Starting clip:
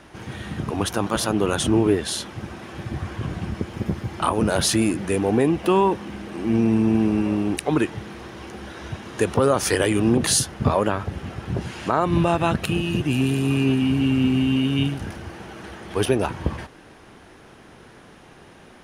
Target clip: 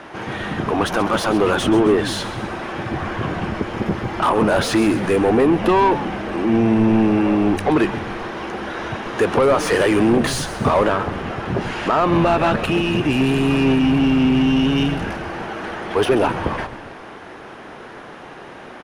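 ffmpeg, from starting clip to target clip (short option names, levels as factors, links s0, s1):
-filter_complex "[0:a]asplit=2[s0][s1];[s1]highpass=f=720:p=1,volume=12.6,asoftclip=type=tanh:threshold=0.501[s2];[s0][s2]amix=inputs=2:normalize=0,lowpass=f=1200:p=1,volume=0.501,asplit=6[s3][s4][s5][s6][s7][s8];[s4]adelay=132,afreqshift=-110,volume=0.224[s9];[s5]adelay=264,afreqshift=-220,volume=0.119[s10];[s6]adelay=396,afreqshift=-330,volume=0.0631[s11];[s7]adelay=528,afreqshift=-440,volume=0.0335[s12];[s8]adelay=660,afreqshift=-550,volume=0.0176[s13];[s3][s9][s10][s11][s12][s13]amix=inputs=6:normalize=0"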